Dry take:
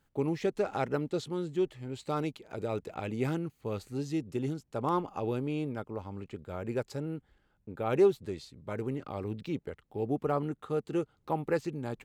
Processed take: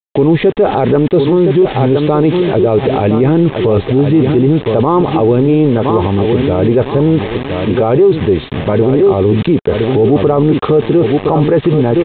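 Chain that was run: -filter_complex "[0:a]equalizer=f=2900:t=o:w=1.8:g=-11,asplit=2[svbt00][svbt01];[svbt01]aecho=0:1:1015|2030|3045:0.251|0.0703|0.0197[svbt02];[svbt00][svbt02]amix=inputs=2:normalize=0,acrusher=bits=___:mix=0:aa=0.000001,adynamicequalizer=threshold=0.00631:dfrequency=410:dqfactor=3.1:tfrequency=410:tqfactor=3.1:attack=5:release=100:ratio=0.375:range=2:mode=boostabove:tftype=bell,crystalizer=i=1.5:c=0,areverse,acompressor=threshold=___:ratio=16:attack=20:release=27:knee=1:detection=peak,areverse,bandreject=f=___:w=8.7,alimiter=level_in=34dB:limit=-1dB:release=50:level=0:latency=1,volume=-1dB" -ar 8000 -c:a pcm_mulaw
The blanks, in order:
8, -38dB, 1400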